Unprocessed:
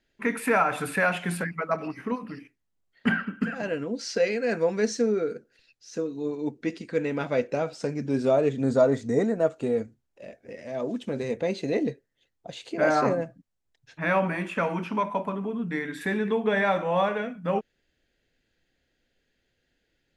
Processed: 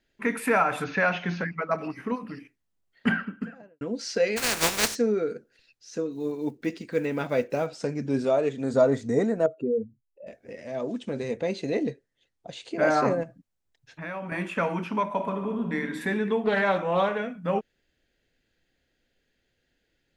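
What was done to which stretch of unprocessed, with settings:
0.84–1.71 s: brick-wall FIR low-pass 6.7 kHz
3.07–3.81 s: studio fade out
4.36–4.94 s: spectral contrast reduction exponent 0.23
6.11–7.68 s: block-companded coder 7-bit
8.24–8.74 s: bass shelf 240 Hz -9 dB
9.46–10.27 s: spectral contrast enhancement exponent 2.1
10.79–12.73 s: elliptic low-pass 10 kHz
13.23–14.32 s: compression 2.5:1, threshold -37 dBFS
15.05–15.79 s: reverb throw, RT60 1.6 s, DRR 5 dB
16.43–17.19 s: loudspeaker Doppler distortion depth 0.2 ms

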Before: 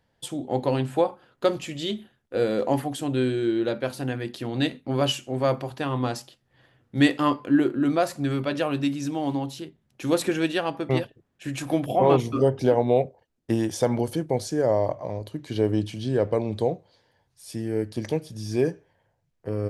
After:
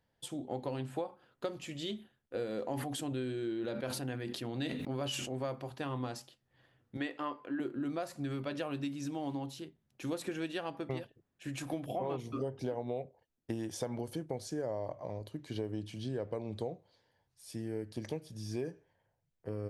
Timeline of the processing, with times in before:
2.67–5.37 s: decay stretcher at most 44 dB/s
6.97–7.60 s: tone controls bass -15 dB, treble -12 dB
whole clip: compression 5:1, threshold -25 dBFS; trim -8.5 dB

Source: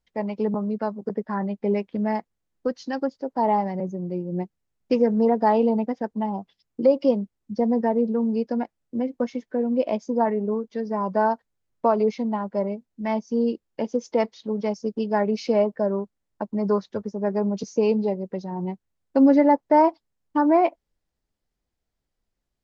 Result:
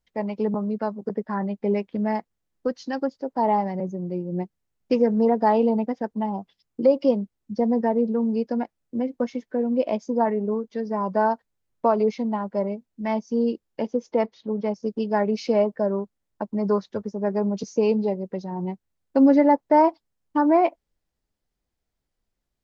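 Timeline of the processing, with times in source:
13.87–14.83 s: low-pass 2.2 kHz 6 dB/octave

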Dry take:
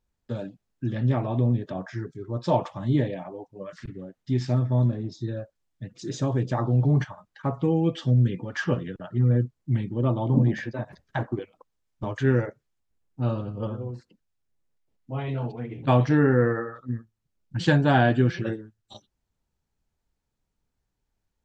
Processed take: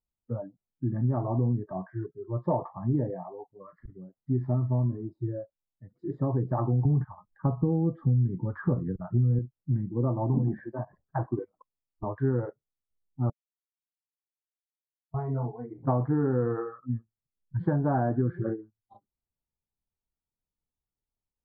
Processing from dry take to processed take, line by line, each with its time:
4.43–5.05 s: CVSD coder 32 kbps
6.85–9.39 s: bass shelf 240 Hz +10 dB
13.30–15.14 s: mute
whole clip: spectral noise reduction 14 dB; inverse Chebyshev low-pass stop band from 2.5 kHz, stop band 40 dB; compression 6:1, threshold -22 dBFS

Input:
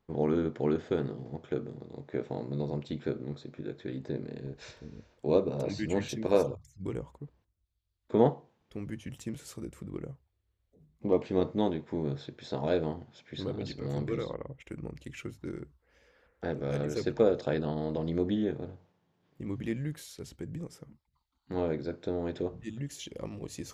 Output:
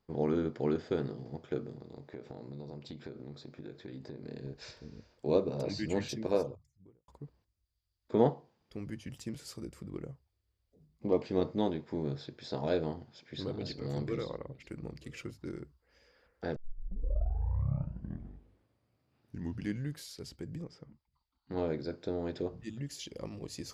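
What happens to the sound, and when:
1.75–4.25 s: compression 5:1, threshold -38 dBFS
6.02–7.08 s: studio fade out
12.24–15.32 s: delay 942 ms -23.5 dB
16.56 s: tape start 3.43 s
20.62–21.57 s: distance through air 140 m
whole clip: peaking EQ 4.8 kHz +12 dB 0.21 oct; trim -2.5 dB

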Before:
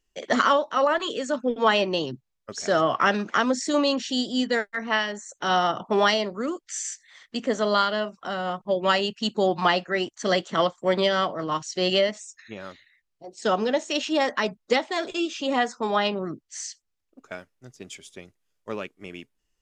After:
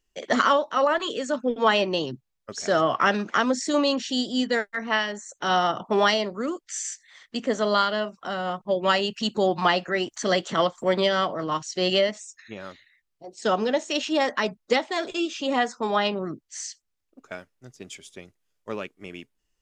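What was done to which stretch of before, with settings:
8.88–11.51 s: upward compressor, threshold -25 dBFS

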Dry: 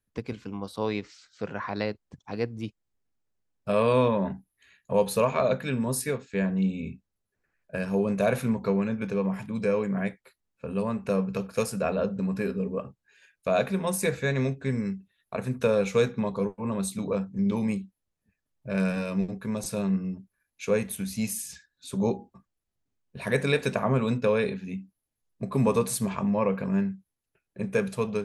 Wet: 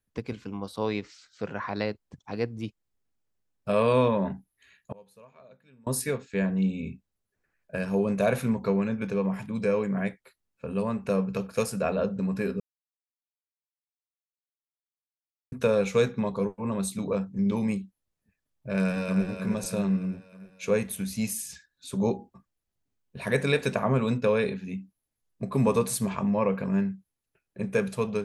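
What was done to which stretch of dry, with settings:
4.92–5.87 s: inverted gate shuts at -31 dBFS, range -29 dB
12.60–15.52 s: mute
18.77–19.26 s: echo throw 310 ms, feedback 55%, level -7 dB

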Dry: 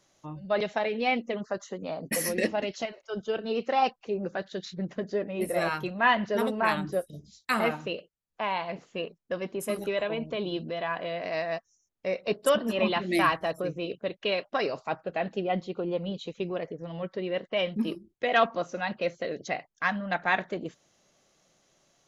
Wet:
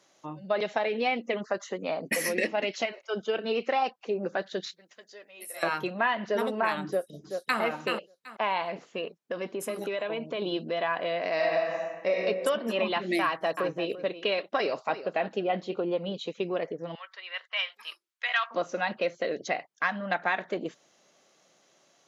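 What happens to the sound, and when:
1.28–3.77 s: peaking EQ 2.3 kHz +6 dB 0.61 oct
4.71–5.63 s: differentiator
6.86–7.60 s: echo throw 380 ms, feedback 20%, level -8.5 dB
8.62–10.42 s: compression, threshold -31 dBFS
11.35–12.17 s: reverb throw, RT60 1.3 s, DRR -5.5 dB
13.23–15.76 s: delay 340 ms -14.5 dB
16.95–18.51 s: high-pass 1.1 kHz 24 dB/octave
whole clip: compression 6:1, threshold -27 dBFS; Bessel high-pass 280 Hz, order 2; treble shelf 7.8 kHz -7 dB; trim +4.5 dB

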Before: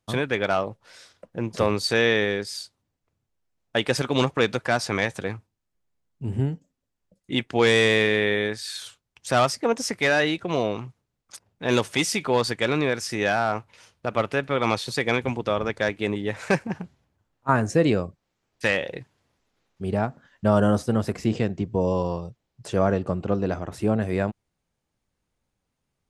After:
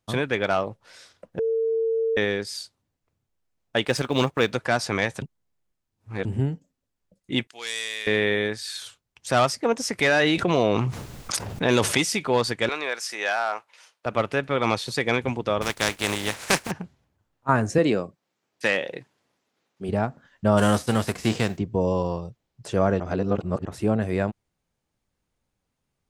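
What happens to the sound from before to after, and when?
1.39–2.17 s: bleep 451 Hz -20.5 dBFS
3.85–4.52 s: companding laws mixed up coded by A
5.22–6.25 s: reverse
7.47–8.07 s: differentiator
9.99–11.98 s: level flattener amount 70%
12.69–14.06 s: high-pass 680 Hz
15.61–16.70 s: spectral contrast reduction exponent 0.41
17.78–19.89 s: high-pass 180 Hz
20.57–21.57 s: formants flattened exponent 0.6
23.00–23.65 s: reverse

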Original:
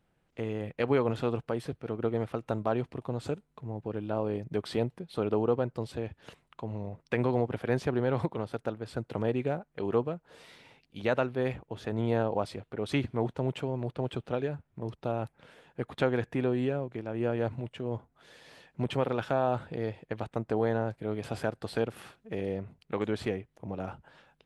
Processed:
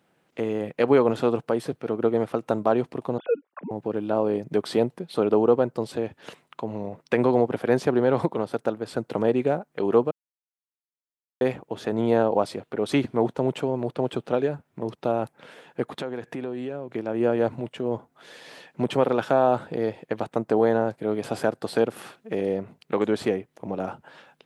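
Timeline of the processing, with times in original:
3.18–3.71 s: formants replaced by sine waves
10.11–11.41 s: mute
15.97–16.91 s: compression 4:1, threshold -37 dBFS
whole clip: dynamic bell 2.5 kHz, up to -5 dB, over -51 dBFS, Q 0.75; high-pass 200 Hz 12 dB/octave; trim +9 dB

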